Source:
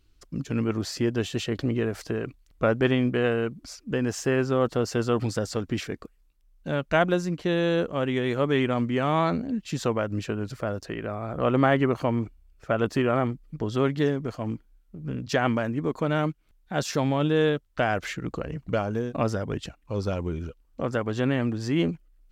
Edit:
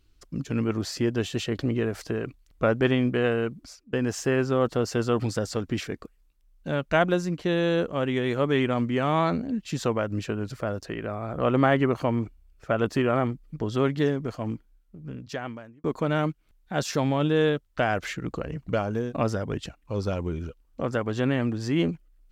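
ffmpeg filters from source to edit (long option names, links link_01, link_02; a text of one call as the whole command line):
ffmpeg -i in.wav -filter_complex "[0:a]asplit=3[link_01][link_02][link_03];[link_01]atrim=end=3.93,asetpts=PTS-STARTPTS,afade=type=out:start_time=3.54:duration=0.39:silence=0.0794328[link_04];[link_02]atrim=start=3.93:end=15.84,asetpts=PTS-STARTPTS,afade=type=in:duration=0.004:curve=hsin:silence=0.0794328,afade=type=out:start_time=10.53:duration=1.38[link_05];[link_03]atrim=start=15.84,asetpts=PTS-STARTPTS,afade=type=in:duration=0.004:curve=hsin[link_06];[link_04][link_05][link_06]concat=n=3:v=0:a=1" out.wav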